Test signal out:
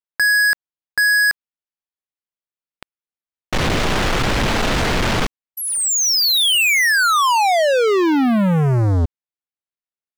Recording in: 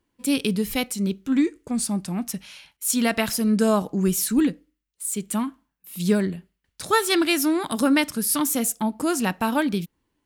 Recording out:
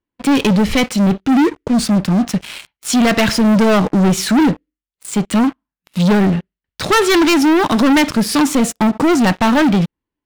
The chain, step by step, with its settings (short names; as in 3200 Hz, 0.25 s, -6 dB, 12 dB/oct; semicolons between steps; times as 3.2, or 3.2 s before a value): LPF 3600 Hz 12 dB/oct; sample leveller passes 5